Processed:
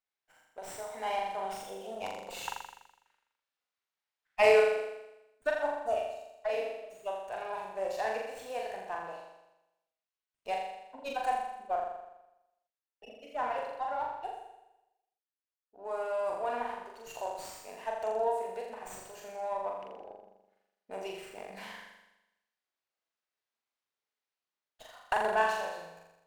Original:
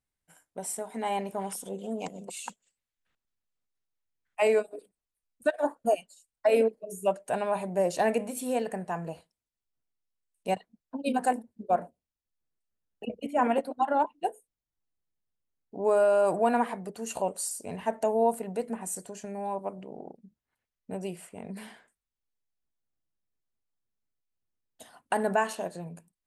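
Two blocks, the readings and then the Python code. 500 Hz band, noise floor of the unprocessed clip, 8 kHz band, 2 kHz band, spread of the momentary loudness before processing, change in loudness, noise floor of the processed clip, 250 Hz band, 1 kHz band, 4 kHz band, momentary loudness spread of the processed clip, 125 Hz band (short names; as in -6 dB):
-4.5 dB, under -85 dBFS, -11.5 dB, +1.0 dB, 17 LU, -4.5 dB, under -85 dBFS, -17.5 dB, -3.0 dB, +0.5 dB, 17 LU, under -15 dB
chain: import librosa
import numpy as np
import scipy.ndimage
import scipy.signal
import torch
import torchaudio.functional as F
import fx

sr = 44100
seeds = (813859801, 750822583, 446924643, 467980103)

p1 = fx.rider(x, sr, range_db=10, speed_s=2.0)
p2 = fx.bandpass_edges(p1, sr, low_hz=630.0, high_hz=5800.0)
p3 = p2 + fx.room_flutter(p2, sr, wall_m=7.1, rt60_s=0.94, dry=0)
p4 = fx.running_max(p3, sr, window=3)
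y = p4 * 10.0 ** (-7.0 / 20.0)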